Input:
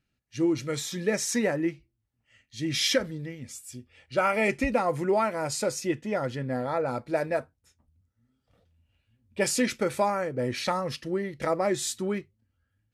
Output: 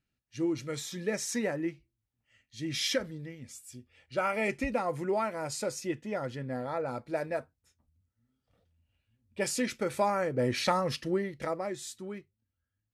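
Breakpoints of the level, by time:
0:09.77 −5.5 dB
0:10.32 +0.5 dB
0:11.10 +0.5 dB
0:11.76 −11 dB

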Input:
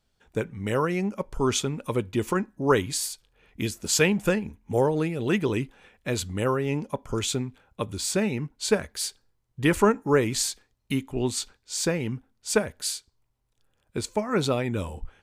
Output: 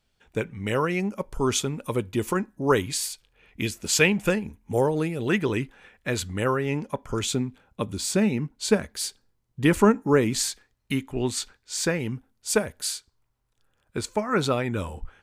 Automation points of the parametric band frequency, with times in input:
parametric band +5 dB 0.92 octaves
2,500 Hz
from 0:01.00 12,000 Hz
from 0:02.88 2,400 Hz
from 0:04.30 11,000 Hz
from 0:05.28 1,700 Hz
from 0:07.20 220 Hz
from 0:10.39 1,700 Hz
from 0:11.99 12,000 Hz
from 0:12.85 1,400 Hz

